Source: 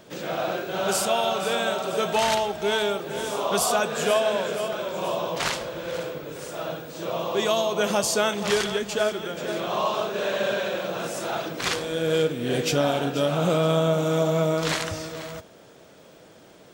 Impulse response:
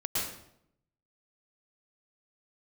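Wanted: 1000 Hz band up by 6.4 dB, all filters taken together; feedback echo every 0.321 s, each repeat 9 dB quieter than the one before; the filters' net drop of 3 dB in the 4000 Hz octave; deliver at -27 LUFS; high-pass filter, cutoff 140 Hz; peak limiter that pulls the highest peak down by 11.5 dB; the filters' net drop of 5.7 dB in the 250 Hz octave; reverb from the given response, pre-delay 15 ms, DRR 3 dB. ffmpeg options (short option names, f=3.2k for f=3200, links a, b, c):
-filter_complex "[0:a]highpass=140,equalizer=f=250:t=o:g=-8.5,equalizer=f=1k:t=o:g=9,equalizer=f=4k:t=o:g=-4.5,alimiter=limit=-18dB:level=0:latency=1,aecho=1:1:321|642|963|1284:0.355|0.124|0.0435|0.0152,asplit=2[a][b];[1:a]atrim=start_sample=2205,adelay=15[c];[b][c]afir=irnorm=-1:irlink=0,volume=-9.5dB[d];[a][d]amix=inputs=2:normalize=0,volume=-2dB"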